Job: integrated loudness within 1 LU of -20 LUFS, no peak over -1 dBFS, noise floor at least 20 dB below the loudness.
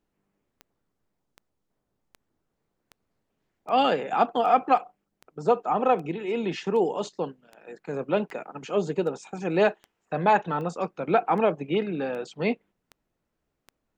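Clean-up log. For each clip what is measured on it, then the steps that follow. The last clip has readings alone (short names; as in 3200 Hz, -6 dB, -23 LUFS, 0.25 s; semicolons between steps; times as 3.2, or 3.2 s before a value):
clicks 18; loudness -26.0 LUFS; peak -8.0 dBFS; loudness target -20.0 LUFS
-> de-click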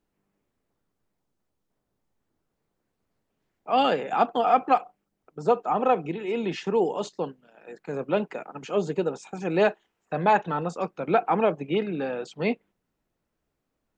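clicks 0; loudness -26.0 LUFS; peak -8.0 dBFS; loudness target -20.0 LUFS
-> gain +6 dB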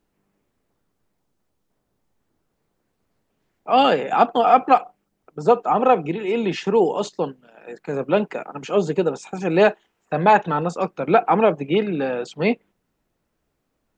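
loudness -20.0 LUFS; peak -2.0 dBFS; noise floor -74 dBFS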